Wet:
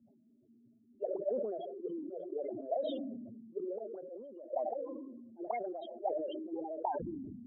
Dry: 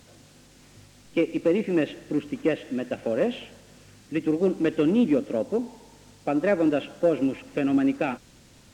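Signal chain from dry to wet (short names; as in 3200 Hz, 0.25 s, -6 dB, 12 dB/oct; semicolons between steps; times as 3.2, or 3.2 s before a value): notches 50/100/150 Hz; auto swell 0.191 s; compressor 6:1, threshold -24 dBFS, peak gain reduction 8 dB; loudest bins only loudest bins 8; thirty-one-band EQ 125 Hz -7 dB, 250 Hz -12 dB, 1000 Hz -6 dB; varispeed +17%; auto-wah 220–2500 Hz, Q 12, up, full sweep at -23.5 dBFS; sustainer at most 30 dB/s; gain +6.5 dB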